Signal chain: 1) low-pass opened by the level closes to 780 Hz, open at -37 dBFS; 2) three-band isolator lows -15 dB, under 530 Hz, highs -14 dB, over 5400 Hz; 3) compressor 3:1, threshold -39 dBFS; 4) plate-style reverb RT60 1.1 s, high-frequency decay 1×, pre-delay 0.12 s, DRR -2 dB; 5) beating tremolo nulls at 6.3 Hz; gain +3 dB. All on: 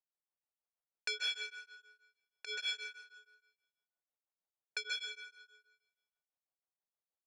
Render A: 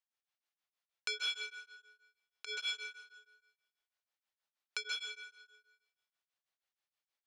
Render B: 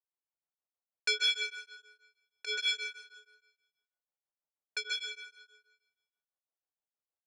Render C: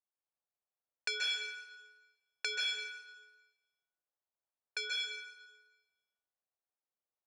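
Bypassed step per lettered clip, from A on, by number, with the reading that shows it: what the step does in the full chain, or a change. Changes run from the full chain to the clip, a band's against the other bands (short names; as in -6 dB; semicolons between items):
1, 1 kHz band +2.0 dB; 3, loudness change +7.0 LU; 5, loudness change +3.0 LU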